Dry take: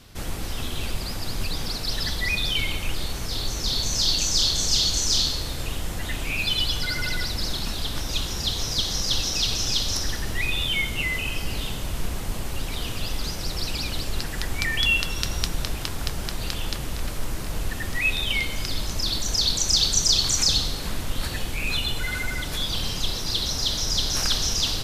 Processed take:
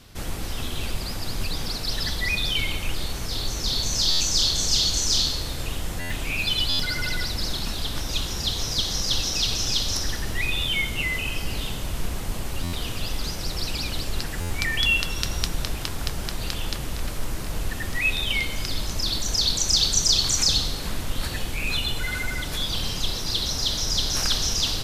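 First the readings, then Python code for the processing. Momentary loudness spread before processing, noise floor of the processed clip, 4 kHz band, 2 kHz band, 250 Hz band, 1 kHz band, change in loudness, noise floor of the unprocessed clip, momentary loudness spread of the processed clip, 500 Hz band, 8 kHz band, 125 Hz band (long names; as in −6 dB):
11 LU, −31 dBFS, 0.0 dB, 0.0 dB, 0.0 dB, 0.0 dB, 0.0 dB, −31 dBFS, 11 LU, 0.0 dB, 0.0 dB, 0.0 dB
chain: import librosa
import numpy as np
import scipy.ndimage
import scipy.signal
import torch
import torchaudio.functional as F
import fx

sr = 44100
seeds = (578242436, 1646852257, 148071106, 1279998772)

y = fx.buffer_glitch(x, sr, at_s=(4.1, 6.0, 6.69, 12.63, 14.4), block=512, repeats=8)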